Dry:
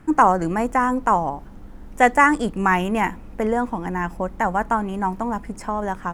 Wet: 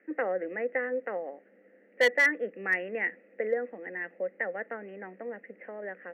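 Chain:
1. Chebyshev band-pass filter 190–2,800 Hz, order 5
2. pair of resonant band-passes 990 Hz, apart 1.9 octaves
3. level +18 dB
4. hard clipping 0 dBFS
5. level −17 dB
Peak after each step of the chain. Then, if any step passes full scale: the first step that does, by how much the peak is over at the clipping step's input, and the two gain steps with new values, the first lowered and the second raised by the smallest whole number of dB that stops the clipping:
−2.0, −10.0, +8.0, 0.0, −17.0 dBFS
step 3, 8.0 dB
step 3 +10 dB, step 5 −9 dB

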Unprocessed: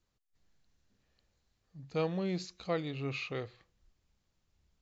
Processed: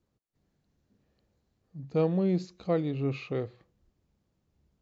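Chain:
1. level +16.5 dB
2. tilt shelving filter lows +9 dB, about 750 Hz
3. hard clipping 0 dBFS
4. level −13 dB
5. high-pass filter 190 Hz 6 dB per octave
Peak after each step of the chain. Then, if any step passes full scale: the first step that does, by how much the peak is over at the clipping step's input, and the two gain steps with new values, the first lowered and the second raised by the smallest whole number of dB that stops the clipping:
−4.5, −2.0, −2.0, −15.0, −16.0 dBFS
no step passes full scale

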